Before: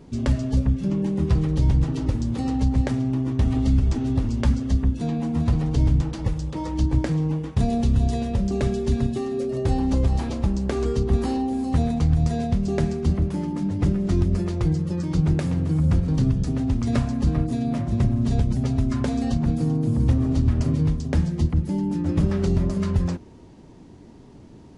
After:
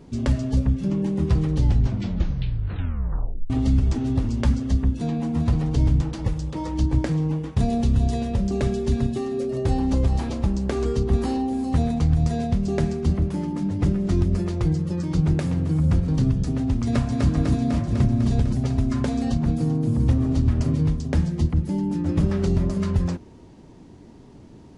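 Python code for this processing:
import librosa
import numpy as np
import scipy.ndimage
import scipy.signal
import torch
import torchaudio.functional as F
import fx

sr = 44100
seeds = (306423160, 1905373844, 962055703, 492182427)

y = fx.echo_throw(x, sr, start_s=16.84, length_s=0.46, ms=250, feedback_pct=75, wet_db=-3.0)
y = fx.edit(y, sr, fx.tape_stop(start_s=1.53, length_s=1.97), tone=tone)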